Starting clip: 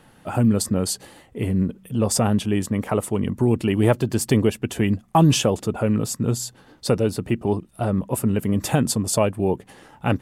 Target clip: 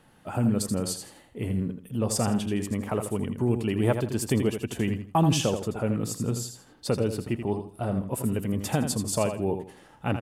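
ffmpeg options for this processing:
-af "aecho=1:1:82|164|246:0.398|0.107|0.029,volume=-6.5dB"

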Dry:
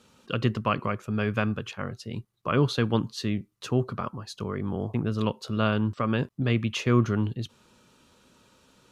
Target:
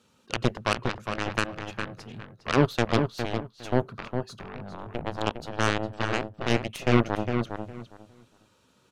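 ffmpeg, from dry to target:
-filter_complex "[0:a]highpass=47,aeval=exprs='0.376*(cos(1*acos(clip(val(0)/0.376,-1,1)))-cos(1*PI/2))+0.0841*(cos(2*acos(clip(val(0)/0.376,-1,1)))-cos(2*PI/2))+0.075*(cos(7*acos(clip(val(0)/0.376,-1,1)))-cos(7*PI/2))':c=same,asplit=2[a][b];[b]adelay=408,lowpass=f=2.6k:p=1,volume=-6dB,asplit=2[c][d];[d]adelay=408,lowpass=f=2.6k:p=1,volume=0.19,asplit=2[e][f];[f]adelay=408,lowpass=f=2.6k:p=1,volume=0.19[g];[a][c][e][g]amix=inputs=4:normalize=0,volume=3dB"

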